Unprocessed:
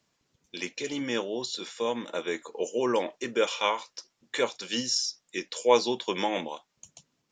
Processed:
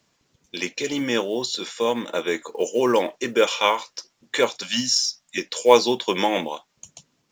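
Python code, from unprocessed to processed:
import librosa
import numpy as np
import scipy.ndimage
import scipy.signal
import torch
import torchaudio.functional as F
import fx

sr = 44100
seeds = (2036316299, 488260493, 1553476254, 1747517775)

y = fx.ellip_bandstop(x, sr, low_hz=280.0, high_hz=580.0, order=3, stop_db=40, at=(4.63, 5.38))
y = fx.quant_float(y, sr, bits=4)
y = y * 10.0 ** (7.0 / 20.0)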